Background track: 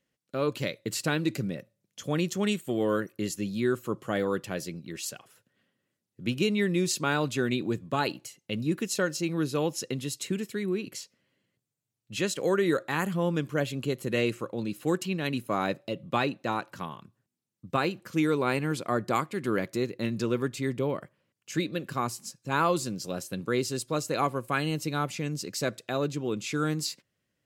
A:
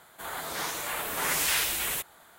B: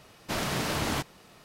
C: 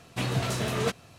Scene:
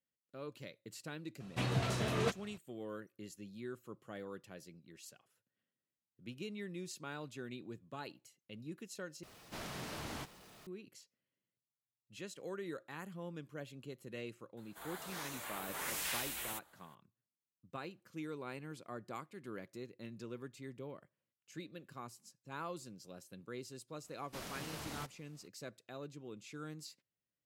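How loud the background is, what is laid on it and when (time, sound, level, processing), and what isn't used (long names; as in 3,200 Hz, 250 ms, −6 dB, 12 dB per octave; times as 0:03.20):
background track −18.5 dB
0:01.40: mix in C −6 dB + high-shelf EQ 6,600 Hz −6.5 dB
0:09.23: overwrite with B −15.5 dB + converter with a step at zero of −40 dBFS
0:14.57: mix in A −12.5 dB
0:24.04: mix in B −17 dB + high-shelf EQ 5,800 Hz +5.5 dB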